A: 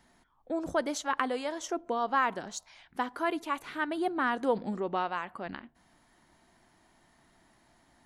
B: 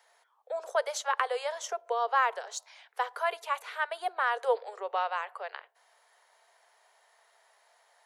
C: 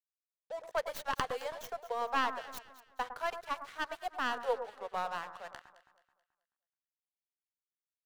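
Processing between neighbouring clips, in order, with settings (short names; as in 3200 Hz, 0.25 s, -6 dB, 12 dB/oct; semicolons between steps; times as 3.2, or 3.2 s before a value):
steep high-pass 430 Hz 96 dB/oct; gain +1.5 dB
tracing distortion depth 0.16 ms; crossover distortion -45.5 dBFS; echo with dull and thin repeats by turns 0.108 s, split 1600 Hz, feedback 60%, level -10 dB; gain -5 dB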